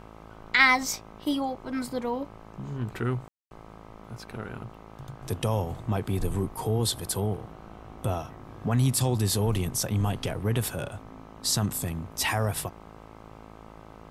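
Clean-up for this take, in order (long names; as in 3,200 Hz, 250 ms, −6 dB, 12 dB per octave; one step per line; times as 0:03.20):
hum removal 54.3 Hz, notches 24
ambience match 0:03.28–0:03.51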